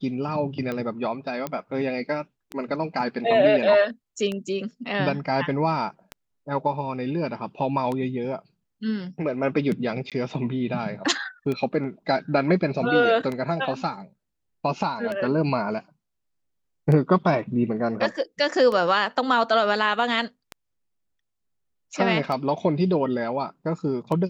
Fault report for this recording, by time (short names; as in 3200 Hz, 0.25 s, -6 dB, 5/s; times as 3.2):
tick 33 1/3 rpm -17 dBFS
1.47 pop -14 dBFS
10.1–10.12 gap 17 ms